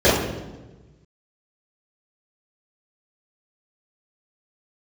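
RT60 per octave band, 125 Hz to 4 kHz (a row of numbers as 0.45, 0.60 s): 1.7, 1.4, 1.3, 1.1, 0.90, 0.85 s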